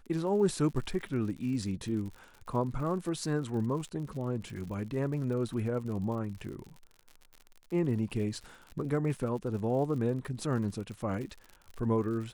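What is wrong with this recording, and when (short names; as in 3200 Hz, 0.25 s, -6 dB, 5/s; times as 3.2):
crackle 77/s -40 dBFS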